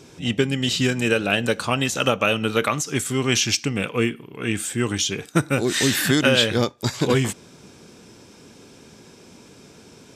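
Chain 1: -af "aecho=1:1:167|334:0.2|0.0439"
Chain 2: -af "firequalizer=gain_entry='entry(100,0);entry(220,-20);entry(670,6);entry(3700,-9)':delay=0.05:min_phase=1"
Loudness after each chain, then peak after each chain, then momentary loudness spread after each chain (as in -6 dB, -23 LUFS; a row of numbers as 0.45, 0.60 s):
-21.5, -25.0 LUFS; -4.5, -5.5 dBFS; 7, 10 LU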